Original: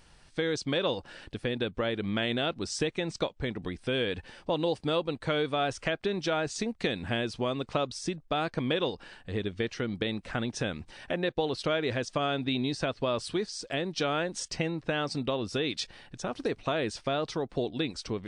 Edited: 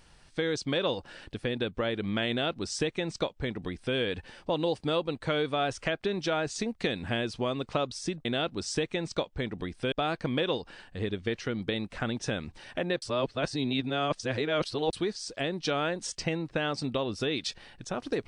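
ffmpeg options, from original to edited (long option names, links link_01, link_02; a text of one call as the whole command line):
ffmpeg -i in.wav -filter_complex "[0:a]asplit=5[link_01][link_02][link_03][link_04][link_05];[link_01]atrim=end=8.252[link_06];[link_02]atrim=start=2.288:end=3.962[link_07];[link_03]atrim=start=8.248:end=11.352[link_08];[link_04]atrim=start=11.348:end=13.262,asetpts=PTS-STARTPTS,areverse[link_09];[link_05]atrim=start=13.258[link_10];[link_06][link_07]acrossfade=duration=0.004:curve1=hsin:curve2=hsin[link_11];[link_11][link_08]acrossfade=duration=0.004:curve1=hsin:curve2=hsin[link_12];[link_12][link_09]acrossfade=duration=0.004:curve1=hsin:curve2=hsin[link_13];[link_13][link_10]acrossfade=duration=0.004:curve1=hsin:curve2=hsin" out.wav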